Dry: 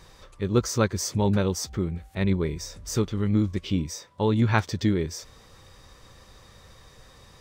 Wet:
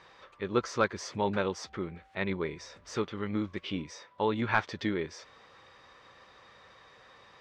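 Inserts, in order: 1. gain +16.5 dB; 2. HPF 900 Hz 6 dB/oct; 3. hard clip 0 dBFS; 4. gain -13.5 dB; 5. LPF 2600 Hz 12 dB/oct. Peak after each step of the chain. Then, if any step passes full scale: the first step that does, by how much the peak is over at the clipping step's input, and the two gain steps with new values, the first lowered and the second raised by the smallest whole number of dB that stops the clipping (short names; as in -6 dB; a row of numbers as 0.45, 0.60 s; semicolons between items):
+9.0, +9.5, 0.0, -13.5, -13.0 dBFS; step 1, 9.5 dB; step 1 +6.5 dB, step 4 -3.5 dB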